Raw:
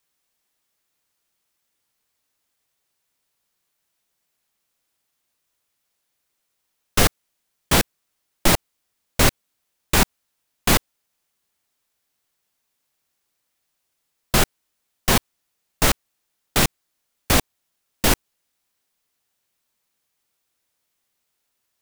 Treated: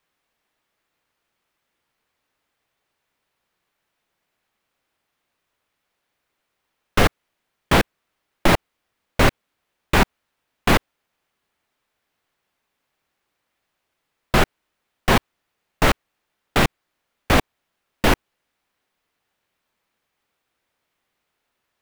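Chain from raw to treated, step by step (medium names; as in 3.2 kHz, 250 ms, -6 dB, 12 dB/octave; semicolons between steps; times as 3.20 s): in parallel at +2 dB: peak limiter -11 dBFS, peak gain reduction 9 dB; on the sum: tone controls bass -2 dB, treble -14 dB; trim -1 dB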